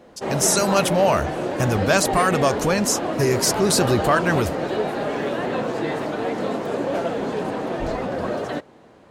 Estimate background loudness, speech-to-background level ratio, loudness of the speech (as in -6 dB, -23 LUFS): -25.5 LUFS, 5.0 dB, -20.5 LUFS